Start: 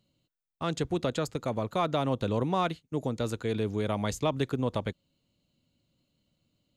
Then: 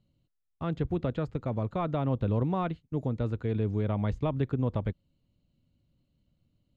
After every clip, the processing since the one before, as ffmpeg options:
ffmpeg -i in.wav -filter_complex "[0:a]acrossover=split=3400[link_01][link_02];[link_02]acompressor=threshold=-59dB:ratio=4:attack=1:release=60[link_03];[link_01][link_03]amix=inputs=2:normalize=0,aemphasis=mode=reproduction:type=bsi,volume=-4.5dB" out.wav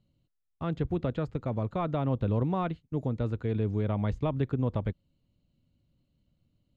ffmpeg -i in.wav -af anull out.wav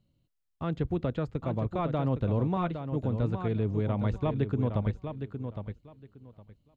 ffmpeg -i in.wav -af "aecho=1:1:812|1624|2436:0.398|0.0756|0.0144" out.wav

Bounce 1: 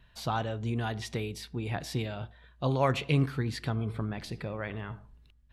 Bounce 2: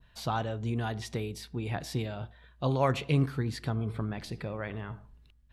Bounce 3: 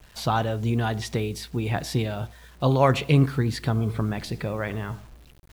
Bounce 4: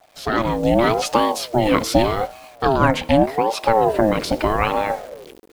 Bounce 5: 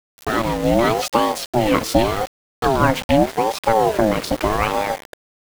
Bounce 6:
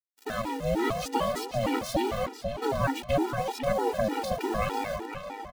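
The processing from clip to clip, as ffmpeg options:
ffmpeg -i in.wav -af "adynamicequalizer=threshold=0.00355:dfrequency=2600:dqfactor=0.88:tfrequency=2600:tqfactor=0.88:attack=5:release=100:ratio=0.375:range=2.5:mode=cutabove:tftype=bell" out.wav
ffmpeg -i in.wav -af "acrusher=bits=9:mix=0:aa=0.000001,volume=7.5dB" out.wav
ffmpeg -i in.wav -af "dynaudnorm=framelen=140:gausssize=5:maxgain=15dB,aeval=exprs='val(0)*sin(2*PI*540*n/s+540*0.3/0.83*sin(2*PI*0.83*n/s))':channel_layout=same" out.wav
ffmpeg -i in.wav -af "aeval=exprs='val(0)*gte(abs(val(0)),0.0562)':channel_layout=same" out.wav
ffmpeg -i in.wav -filter_complex "[0:a]asplit=2[link_01][link_02];[link_02]adelay=497,lowpass=frequency=5000:poles=1,volume=-6.5dB,asplit=2[link_03][link_04];[link_04]adelay=497,lowpass=frequency=5000:poles=1,volume=0.36,asplit=2[link_05][link_06];[link_06]adelay=497,lowpass=frequency=5000:poles=1,volume=0.36,asplit=2[link_07][link_08];[link_08]adelay=497,lowpass=frequency=5000:poles=1,volume=0.36[link_09];[link_01][link_03][link_05][link_07][link_09]amix=inputs=5:normalize=0,afftfilt=real='re*gt(sin(2*PI*3.3*pts/sr)*(1-2*mod(floor(b*sr/1024/250),2)),0)':imag='im*gt(sin(2*PI*3.3*pts/sr)*(1-2*mod(floor(b*sr/1024/250),2)),0)':win_size=1024:overlap=0.75,volume=-8dB" out.wav

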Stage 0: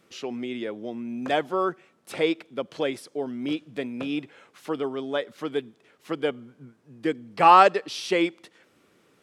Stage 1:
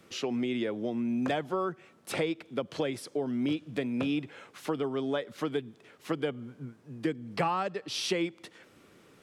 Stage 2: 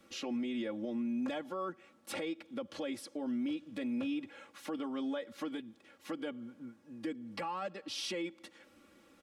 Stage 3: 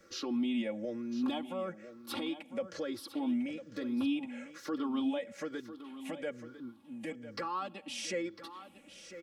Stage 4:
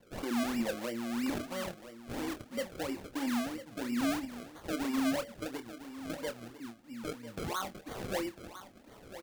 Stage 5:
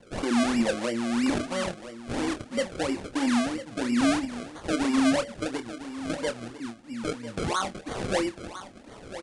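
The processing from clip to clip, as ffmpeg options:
ffmpeg -i in.wav -filter_complex "[0:a]lowshelf=frequency=100:gain=8,acrossover=split=150[link_01][link_02];[link_02]acompressor=threshold=-31dB:ratio=8[link_03];[link_01][link_03]amix=inputs=2:normalize=0,volume=3dB" out.wav
ffmpeg -i in.wav -af "aecho=1:1:3.6:0.93,alimiter=limit=-23dB:level=0:latency=1:release=32,volume=-7dB" out.wav
ffmpeg -i in.wav -af "afftfilt=real='re*pow(10,12/40*sin(2*PI*(0.55*log(max(b,1)*sr/1024/100)/log(2)-(-1.1)*(pts-256)/sr)))':imag='im*pow(10,12/40*sin(2*PI*(0.55*log(max(b,1)*sr/1024/100)/log(2)-(-1.1)*(pts-256)/sr)))':win_size=1024:overlap=0.75,aecho=1:1:1001:0.224" out.wav
ffmpeg -i in.wav -filter_complex "[0:a]acrusher=samples=33:mix=1:aa=0.000001:lfo=1:lforange=33:lforate=3,asplit=2[link_01][link_02];[link_02]adelay=26,volume=-9.5dB[link_03];[link_01][link_03]amix=inputs=2:normalize=0" out.wav
ffmpeg -i in.wav -af "aresample=22050,aresample=44100,volume=8.5dB" out.wav

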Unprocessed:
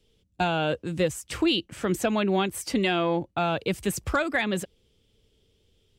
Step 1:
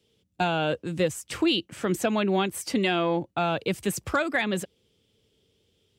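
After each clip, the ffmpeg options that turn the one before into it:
ffmpeg -i in.wav -af "highpass=100" out.wav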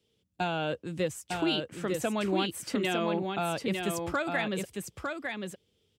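ffmpeg -i in.wav -af "aecho=1:1:904:0.596,volume=-5.5dB" out.wav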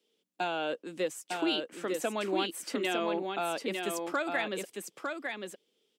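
ffmpeg -i in.wav -af "highpass=frequency=250:width=0.5412,highpass=frequency=250:width=1.3066,volume=-1dB" out.wav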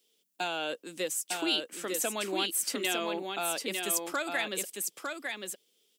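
ffmpeg -i in.wav -af "crystalizer=i=4:c=0,volume=-3dB" out.wav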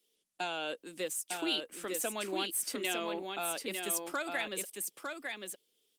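ffmpeg -i in.wav -af "volume=-3dB" -ar 48000 -c:a libopus -b:a 32k out.opus

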